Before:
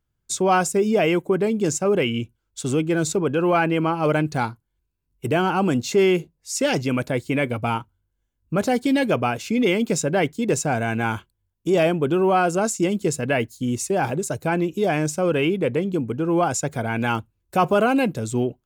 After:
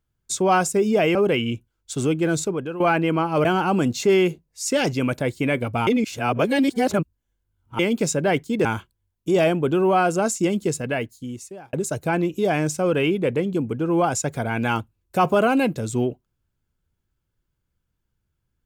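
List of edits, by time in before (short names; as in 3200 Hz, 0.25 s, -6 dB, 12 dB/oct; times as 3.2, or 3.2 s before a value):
1.15–1.83 cut
3.01–3.48 fade out, to -13.5 dB
4.13–5.34 cut
7.76–9.68 reverse
10.54–11.04 cut
12.95–14.12 fade out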